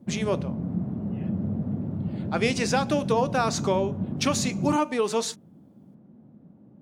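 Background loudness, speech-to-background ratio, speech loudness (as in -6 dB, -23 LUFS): -31.0 LUFS, 4.5 dB, -26.5 LUFS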